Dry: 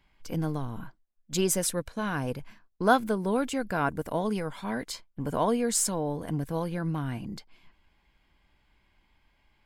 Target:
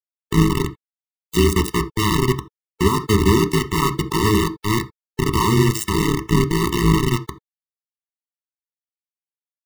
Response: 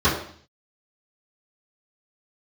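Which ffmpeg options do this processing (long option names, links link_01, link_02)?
-filter_complex "[0:a]highpass=frequency=54:width=0.5412,highpass=frequency=54:width=1.3066,aemphasis=mode=reproduction:type=50fm,bandreject=frequency=99.24:width_type=h:width=4,bandreject=frequency=198.48:width_type=h:width=4,bandreject=frequency=297.72:width_type=h:width=4,tremolo=f=110:d=0.947,acrusher=bits=4:mix=0:aa=0.000001,asplit=2[link_01][link_02];[1:a]atrim=start_sample=2205,atrim=end_sample=3969[link_03];[link_02][link_03]afir=irnorm=-1:irlink=0,volume=-27dB[link_04];[link_01][link_04]amix=inputs=2:normalize=0,alimiter=level_in=18.5dB:limit=-1dB:release=50:level=0:latency=1,afftfilt=real='re*eq(mod(floor(b*sr/1024/440),2),0)':imag='im*eq(mod(floor(b*sr/1024/440),2),0)':win_size=1024:overlap=0.75,volume=-2dB"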